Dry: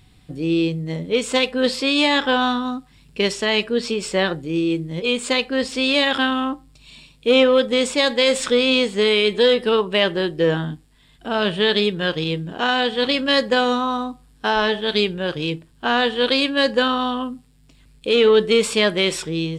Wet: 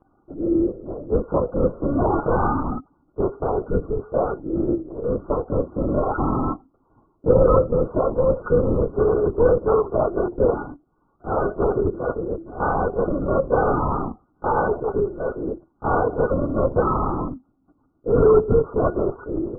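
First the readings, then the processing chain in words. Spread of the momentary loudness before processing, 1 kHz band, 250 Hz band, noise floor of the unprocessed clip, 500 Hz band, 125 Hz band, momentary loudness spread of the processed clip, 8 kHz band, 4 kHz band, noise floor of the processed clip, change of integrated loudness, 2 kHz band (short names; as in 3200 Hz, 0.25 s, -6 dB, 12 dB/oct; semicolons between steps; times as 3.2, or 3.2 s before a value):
10 LU, -0.5 dB, -2.5 dB, -54 dBFS, -0.5 dB, +4.5 dB, 11 LU, under -40 dB, under -40 dB, -65 dBFS, -2.5 dB, -14.5 dB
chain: brick-wall FIR band-pass 200–1500 Hz; LPC vocoder at 8 kHz whisper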